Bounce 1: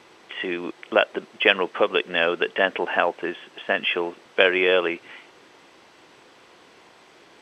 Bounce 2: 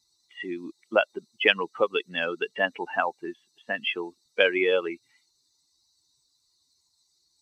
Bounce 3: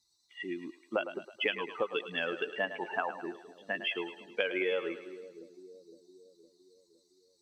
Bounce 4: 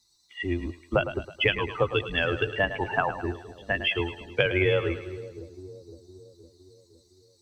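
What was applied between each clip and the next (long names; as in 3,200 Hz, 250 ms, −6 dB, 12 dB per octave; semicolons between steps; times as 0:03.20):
spectral dynamics exaggerated over time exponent 2
downward compressor, threshold −23 dBFS, peak gain reduction 9.5 dB; echo with a time of its own for lows and highs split 440 Hz, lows 512 ms, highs 107 ms, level −11 dB; level −4.5 dB
sub-octave generator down 2 octaves, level +2 dB; level +7.5 dB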